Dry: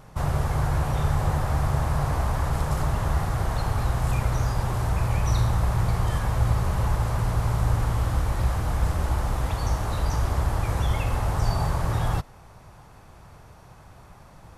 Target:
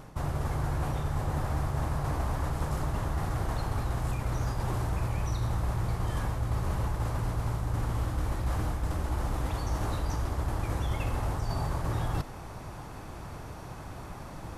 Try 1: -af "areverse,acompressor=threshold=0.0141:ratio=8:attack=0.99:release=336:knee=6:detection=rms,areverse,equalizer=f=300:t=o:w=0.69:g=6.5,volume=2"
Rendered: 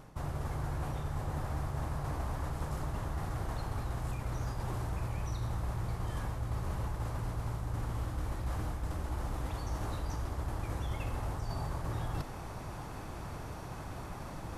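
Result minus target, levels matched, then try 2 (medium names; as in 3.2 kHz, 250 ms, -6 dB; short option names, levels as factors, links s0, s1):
compression: peak gain reduction +5.5 dB
-af "areverse,acompressor=threshold=0.0299:ratio=8:attack=0.99:release=336:knee=6:detection=rms,areverse,equalizer=f=300:t=o:w=0.69:g=6.5,volume=2"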